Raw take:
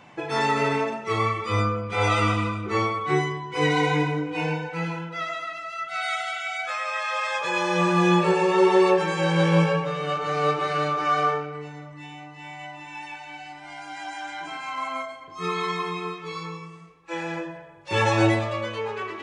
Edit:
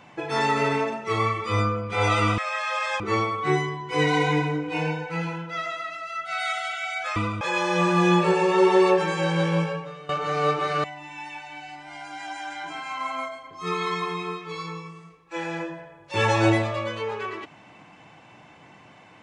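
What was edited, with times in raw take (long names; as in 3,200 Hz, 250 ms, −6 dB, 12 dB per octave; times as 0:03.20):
0:02.38–0:02.63: swap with 0:06.79–0:07.41
0:09.09–0:10.09: fade out linear, to −16 dB
0:10.84–0:12.61: remove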